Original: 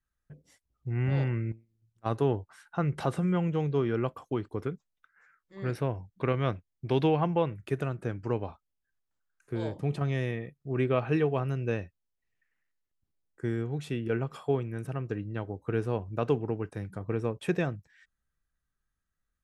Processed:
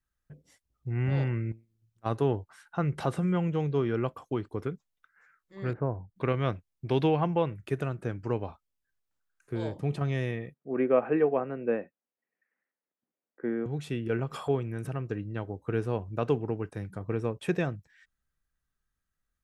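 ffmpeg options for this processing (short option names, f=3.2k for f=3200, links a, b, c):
-filter_complex "[0:a]asettb=1/sr,asplit=3[a][b][c];[a]atrim=end=5.734[d];[b]atrim=start=5.73:end=6.16,asetpts=PTS-STARTPTS,afade=t=in:d=0.004:c=qsin,afade=t=out:st=0.426:d=0.004:c=qsin,lowpass=f=1.4k:w=0.5412,lowpass=f=1.4k:w=1.3066[e];[c]atrim=start=6.156[f];[d][e]acrossfade=d=0.004:c1=hsin:c2=qsin[g];[g][f]acrossfade=d=0.004:c1=qsin:c2=hsin,asettb=1/sr,asplit=3[h][i][j];[h]atrim=end=10.544[k];[i]atrim=start=10.54:end=13.66,asetpts=PTS-STARTPTS,afade=t=in:d=0.004:c=qsin,afade=t=out:st=3.116:d=0.004:c=qsin,highpass=f=200:w=0.5412,highpass=f=200:w=1.3066,equalizer=f=240:t=q:w=4:g=4,equalizer=f=520:t=q:w=4:g=7,equalizer=f=730:t=q:w=4:g=3,lowpass=f=2.2k:w=0.5412,lowpass=f=2.2k:w=1.3066[l];[j]atrim=start=13.656[m];[k][l]acrossfade=d=0.004:c1=hsin:c2=qsin[n];[n][m]acrossfade=d=0.004:c1=qsin:c2=hsin,asettb=1/sr,asplit=3[o][p][q];[o]atrim=end=14.194[r];[p]atrim=start=14.19:end=15.01,asetpts=PTS-STARTPTS,afade=t=in:d=0.004:c=qsin,afade=t=out:st=0.816:d=0.004:c=qsin,acompressor=mode=upward:threshold=-29dB:ratio=2.5:attack=3.2:release=140:knee=2.83:detection=peak[s];[q]atrim=start=15.006[t];[r][s]acrossfade=d=0.004:c1=hsin:c2=qsin[u];[u][t]acrossfade=d=0.004:c1=qsin:c2=hsin"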